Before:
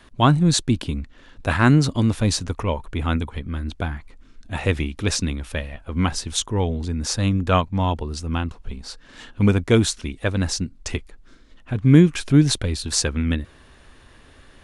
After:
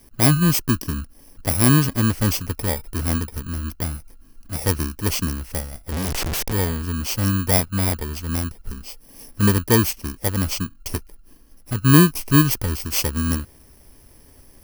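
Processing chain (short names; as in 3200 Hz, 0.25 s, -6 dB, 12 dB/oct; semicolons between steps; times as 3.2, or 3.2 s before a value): FFT order left unsorted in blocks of 32 samples; 5.92–6.53 Schmitt trigger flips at -35.5 dBFS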